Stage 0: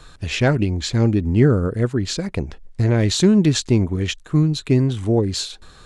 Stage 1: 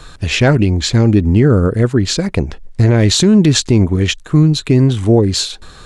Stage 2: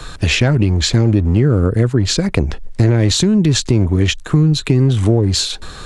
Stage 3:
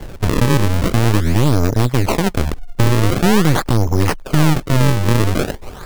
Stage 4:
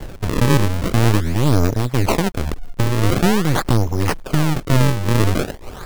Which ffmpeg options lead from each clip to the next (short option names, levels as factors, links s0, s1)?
-af "alimiter=level_in=2.82:limit=0.891:release=50:level=0:latency=1,volume=0.891"
-filter_complex "[0:a]acrossover=split=120[s0][s1];[s0]volume=11.2,asoftclip=hard,volume=0.0891[s2];[s1]acompressor=threshold=0.112:ratio=6[s3];[s2][s3]amix=inputs=2:normalize=0,volume=1.88"
-af "acrusher=samples=35:mix=1:aa=0.000001:lfo=1:lforange=56:lforate=0.45,aeval=exprs='0.794*(cos(1*acos(clip(val(0)/0.794,-1,1)))-cos(1*PI/2))+0.0794*(cos(5*acos(clip(val(0)/0.794,-1,1)))-cos(5*PI/2))+0.282*(cos(6*acos(clip(val(0)/0.794,-1,1)))-cos(6*PI/2))+0.0398*(cos(8*acos(clip(val(0)/0.794,-1,1)))-cos(8*PI/2))':c=same,volume=0.631"
-af "tremolo=f=1.9:d=0.46,acrusher=bits=8:dc=4:mix=0:aa=0.000001"